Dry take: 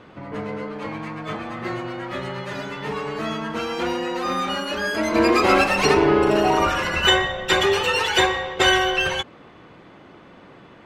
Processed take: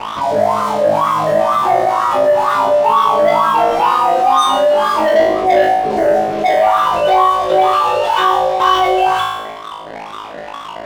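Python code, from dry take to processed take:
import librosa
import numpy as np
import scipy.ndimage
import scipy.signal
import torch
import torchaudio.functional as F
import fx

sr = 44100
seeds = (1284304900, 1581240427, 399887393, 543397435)

p1 = fx.riaa(x, sr, side='playback')
p2 = fx.spec_box(p1, sr, start_s=5.22, length_s=1.34, low_hz=760.0, high_hz=7900.0, gain_db=-27)
p3 = fx.band_shelf(p2, sr, hz=4800.0, db=14.5, octaves=1.7)
p4 = fx.rider(p3, sr, range_db=5, speed_s=2.0)
p5 = fx.wah_lfo(p4, sr, hz=2.1, low_hz=590.0, high_hz=1200.0, q=17.0)
p6 = fx.leveller(p5, sr, passes=3)
p7 = p6 + fx.room_flutter(p6, sr, wall_m=3.2, rt60_s=0.59, dry=0)
p8 = fx.env_flatten(p7, sr, amount_pct=50)
y = F.gain(torch.from_numpy(p8), 7.5).numpy()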